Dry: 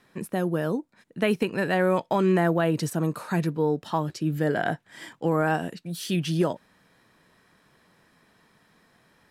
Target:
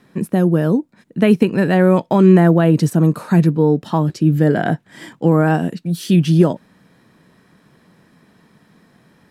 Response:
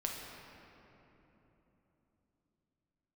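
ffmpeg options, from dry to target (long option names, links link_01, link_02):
-af "equalizer=frequency=190:width=0.56:gain=10,volume=4dB"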